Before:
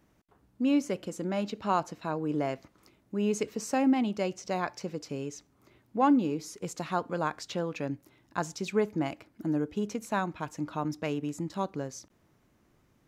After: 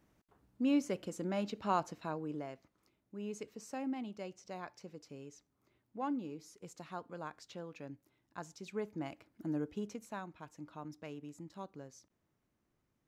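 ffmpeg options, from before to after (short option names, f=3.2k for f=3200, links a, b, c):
-af "volume=2dB,afade=t=out:st=1.95:d=0.51:silence=0.354813,afade=t=in:st=8.6:d=1.04:silence=0.446684,afade=t=out:st=9.64:d=0.55:silence=0.421697"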